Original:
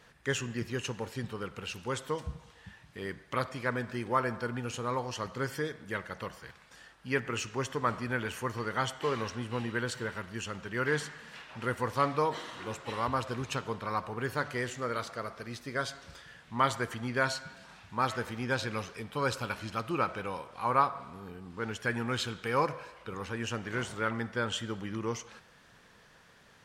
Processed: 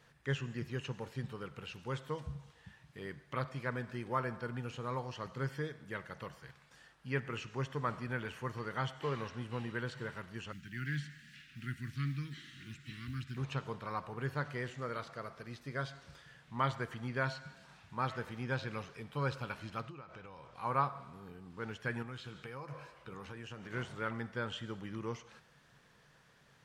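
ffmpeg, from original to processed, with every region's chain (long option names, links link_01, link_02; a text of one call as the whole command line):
ffmpeg -i in.wav -filter_complex "[0:a]asettb=1/sr,asplit=3[link_01][link_02][link_03];[link_01]atrim=end=10.524[link_04];[link_02]atrim=start=10.52:end=13.37,asetpts=PTS-STARTPTS,afade=type=in:duration=0.004:curve=qsin,afade=type=out:start_time=2.846:duration=0.004:curve=qsin,asuperstop=centerf=690:order=8:qfactor=0.52,acrusher=bits=6:mode=log:mix=0:aa=0.000001[link_05];[link_03]atrim=start=13.366[link_06];[link_04][link_05]acrossfade=duration=0.004:curve1=hsin:curve2=qsin[link_07];[link_07][link_06]acrossfade=duration=0.004:curve1=qsin:curve2=hsin,asettb=1/sr,asplit=3[link_08][link_09][link_10];[link_08]atrim=end=19.854[link_11];[link_09]atrim=start=19.85:end=20.55,asetpts=PTS-STARTPTS,afade=type=in:duration=0.004:curve=qsin,afade=type=out:start_time=0.696:duration=0.004:curve=qsin,lowpass=frequency=7500:width=0.5412,lowpass=frequency=7500:width=1.3066,acompressor=threshold=-40dB:ratio=16:attack=3.2:release=140:knee=1:detection=peak,asubboost=boost=9:cutoff=120[link_12];[link_10]atrim=start=20.546[link_13];[link_11][link_12]acrossfade=duration=0.004:curve1=hsin:curve2=qsin[link_14];[link_14][link_13]acrossfade=duration=0.004:curve1=qsin:curve2=hsin,asettb=1/sr,asplit=3[link_15][link_16][link_17];[link_15]atrim=end=22.024[link_18];[link_16]atrim=start=22.02:end=23.72,asetpts=PTS-STARTPTS,afade=type=in:duration=0.004:curve=qsin,afade=type=out:start_time=1.696:duration=0.004:curve=qsin,asplit=2[link_19][link_20];[link_20]adelay=15,volume=-12dB[link_21];[link_19][link_21]amix=inputs=2:normalize=0,atrim=end_sample=74970,acompressor=threshold=-36dB:ratio=10:attack=3.2:release=140:knee=1:detection=peak[link_22];[link_17]atrim=start=23.716[link_23];[link_18][link_22]acrossfade=duration=0.004:curve1=hsin:curve2=qsin[link_24];[link_24][link_23]acrossfade=duration=0.004:curve1=qsin:curve2=hsin,acrossover=split=4400[link_25][link_26];[link_26]acompressor=threshold=-57dB:ratio=4:attack=1:release=60[link_27];[link_25][link_27]amix=inputs=2:normalize=0,equalizer=frequency=140:width_type=o:width=0.25:gain=11,volume=-6.5dB" out.wav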